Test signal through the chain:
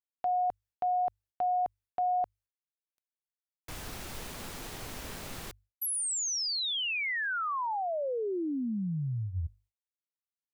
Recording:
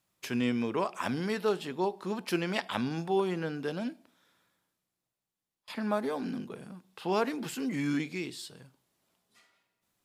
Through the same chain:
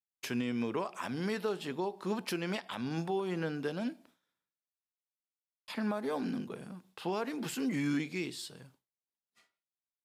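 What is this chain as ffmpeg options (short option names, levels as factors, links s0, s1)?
-af "bandreject=f=50:t=h:w=6,bandreject=f=100:t=h:w=6,agate=range=0.0224:threshold=0.00141:ratio=3:detection=peak,alimiter=limit=0.0631:level=0:latency=1:release=219"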